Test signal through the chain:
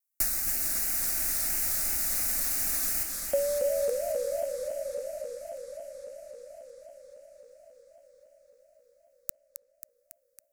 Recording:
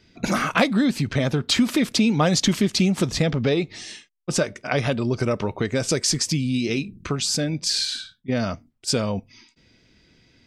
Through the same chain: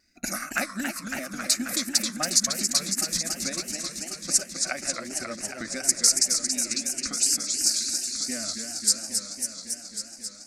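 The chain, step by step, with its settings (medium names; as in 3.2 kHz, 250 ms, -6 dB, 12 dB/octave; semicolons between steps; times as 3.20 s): pre-emphasis filter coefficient 0.9; static phaser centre 660 Hz, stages 8; transient shaper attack +7 dB, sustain -10 dB; wow and flutter 37 cents; bass shelf 150 Hz +4.5 dB; modulated delay 273 ms, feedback 80%, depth 193 cents, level -6 dB; trim +4 dB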